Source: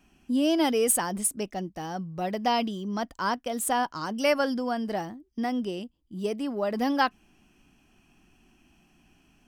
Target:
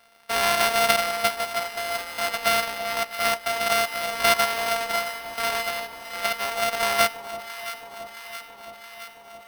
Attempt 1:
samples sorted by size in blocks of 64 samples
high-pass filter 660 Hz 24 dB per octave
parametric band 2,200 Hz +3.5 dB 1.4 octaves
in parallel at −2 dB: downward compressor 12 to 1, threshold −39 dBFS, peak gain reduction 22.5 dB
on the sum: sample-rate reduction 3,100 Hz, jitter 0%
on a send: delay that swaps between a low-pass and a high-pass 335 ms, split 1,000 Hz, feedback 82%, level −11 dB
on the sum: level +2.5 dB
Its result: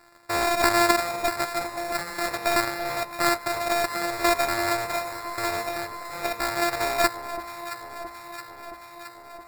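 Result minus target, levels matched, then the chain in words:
sample-rate reduction: distortion +8 dB
samples sorted by size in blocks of 64 samples
high-pass filter 660 Hz 24 dB per octave
parametric band 2,200 Hz +3.5 dB 1.4 octaves
in parallel at −2 dB: downward compressor 12 to 1, threshold −39 dBFS, peak gain reduction 22.5 dB
on the sum: sample-rate reduction 7,100 Hz, jitter 0%
on a send: delay that swaps between a low-pass and a high-pass 335 ms, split 1,000 Hz, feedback 82%, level −11 dB
on the sum: level +2.5 dB

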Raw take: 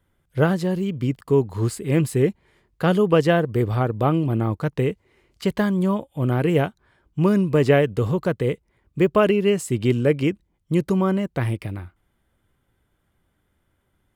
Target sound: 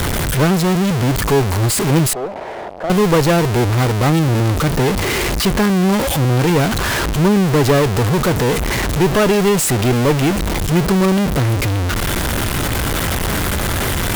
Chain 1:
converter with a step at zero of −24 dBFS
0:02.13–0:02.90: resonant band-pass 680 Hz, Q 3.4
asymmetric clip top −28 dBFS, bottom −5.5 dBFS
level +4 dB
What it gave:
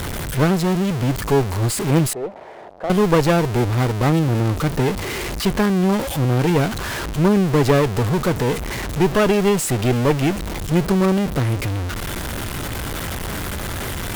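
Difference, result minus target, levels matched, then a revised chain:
converter with a step at zero: distortion −8 dB
converter with a step at zero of −12.5 dBFS
0:02.13–0:02.90: resonant band-pass 680 Hz, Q 3.4
asymmetric clip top −28 dBFS, bottom −5.5 dBFS
level +4 dB

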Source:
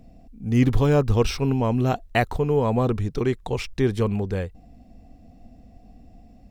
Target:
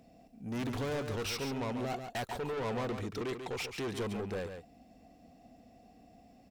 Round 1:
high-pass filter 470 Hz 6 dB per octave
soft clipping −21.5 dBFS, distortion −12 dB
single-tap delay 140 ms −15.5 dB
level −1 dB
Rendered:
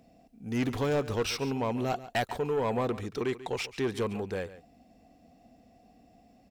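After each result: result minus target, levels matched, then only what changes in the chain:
echo-to-direct −8 dB; soft clipping: distortion −7 dB
change: single-tap delay 140 ms −7.5 dB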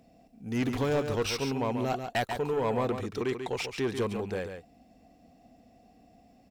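soft clipping: distortion −7 dB
change: soft clipping −32.5 dBFS, distortion −5 dB

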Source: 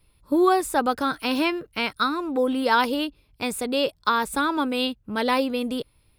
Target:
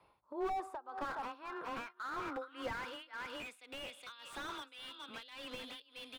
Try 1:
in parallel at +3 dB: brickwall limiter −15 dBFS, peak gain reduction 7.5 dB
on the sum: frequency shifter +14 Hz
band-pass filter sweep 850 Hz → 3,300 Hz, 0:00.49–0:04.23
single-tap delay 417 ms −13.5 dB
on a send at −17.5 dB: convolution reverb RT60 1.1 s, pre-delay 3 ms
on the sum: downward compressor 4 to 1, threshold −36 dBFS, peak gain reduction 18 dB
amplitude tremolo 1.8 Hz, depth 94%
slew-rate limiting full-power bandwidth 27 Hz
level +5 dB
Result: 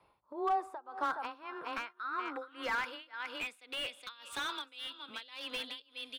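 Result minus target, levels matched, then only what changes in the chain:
slew-rate limiting: distortion −10 dB
change: slew-rate limiting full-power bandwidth 7.5 Hz

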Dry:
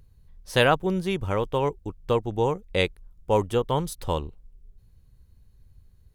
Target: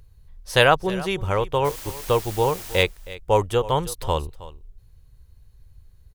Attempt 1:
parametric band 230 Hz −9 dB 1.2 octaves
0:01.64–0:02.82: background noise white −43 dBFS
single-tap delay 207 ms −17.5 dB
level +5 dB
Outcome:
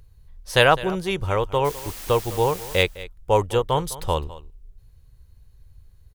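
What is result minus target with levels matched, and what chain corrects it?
echo 111 ms early
parametric band 230 Hz −9 dB 1.2 octaves
0:01.64–0:02.82: background noise white −43 dBFS
single-tap delay 318 ms −17.5 dB
level +5 dB

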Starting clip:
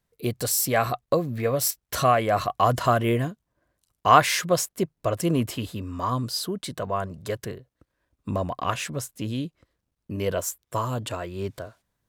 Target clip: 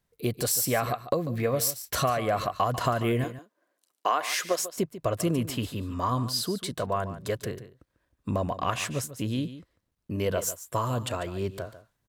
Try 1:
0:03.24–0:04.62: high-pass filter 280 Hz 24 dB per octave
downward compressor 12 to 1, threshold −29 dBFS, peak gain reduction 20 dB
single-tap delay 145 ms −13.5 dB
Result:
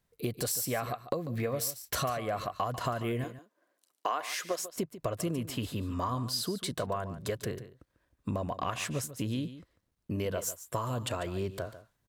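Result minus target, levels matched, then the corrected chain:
downward compressor: peak gain reduction +7 dB
0:03.24–0:04.62: high-pass filter 280 Hz 24 dB per octave
downward compressor 12 to 1, threshold −21.5 dBFS, peak gain reduction 13 dB
single-tap delay 145 ms −13.5 dB

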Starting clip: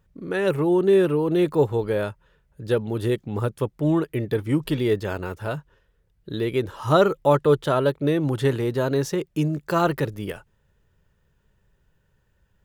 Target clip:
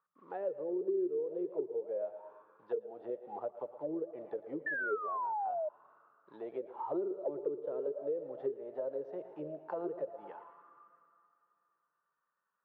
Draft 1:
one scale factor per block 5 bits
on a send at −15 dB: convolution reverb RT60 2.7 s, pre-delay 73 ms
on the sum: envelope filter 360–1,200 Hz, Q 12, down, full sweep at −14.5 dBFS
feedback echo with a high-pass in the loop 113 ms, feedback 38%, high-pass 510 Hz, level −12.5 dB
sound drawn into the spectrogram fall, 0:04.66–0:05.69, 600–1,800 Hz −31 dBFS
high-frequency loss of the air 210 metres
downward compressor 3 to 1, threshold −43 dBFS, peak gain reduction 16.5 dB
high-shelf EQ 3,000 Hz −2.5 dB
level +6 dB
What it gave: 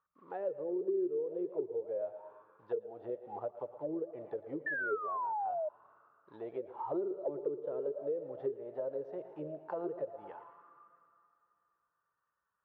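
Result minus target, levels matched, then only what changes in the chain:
125 Hz band +3.5 dB
add after downward compressor: high-pass filter 150 Hz 24 dB per octave

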